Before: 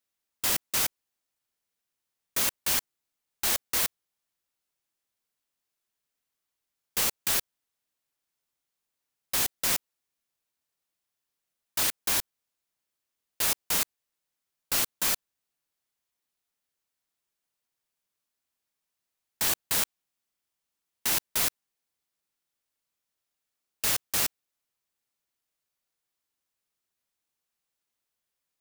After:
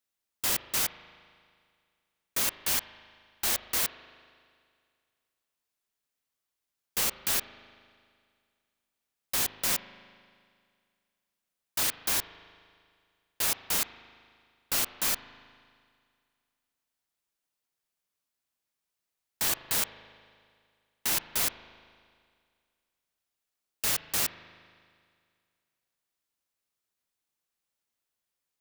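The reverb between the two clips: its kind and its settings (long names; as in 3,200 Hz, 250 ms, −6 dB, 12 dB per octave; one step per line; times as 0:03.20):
spring reverb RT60 2.1 s, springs 38 ms, chirp 55 ms, DRR 12.5 dB
level −1.5 dB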